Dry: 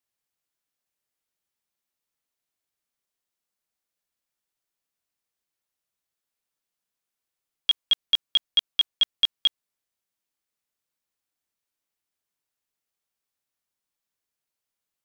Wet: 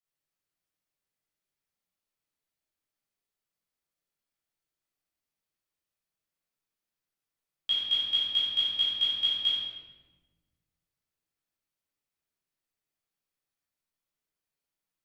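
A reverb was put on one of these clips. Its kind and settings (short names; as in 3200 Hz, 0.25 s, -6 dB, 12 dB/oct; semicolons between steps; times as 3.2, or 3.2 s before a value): shoebox room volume 930 m³, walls mixed, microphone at 6.3 m; gain -14 dB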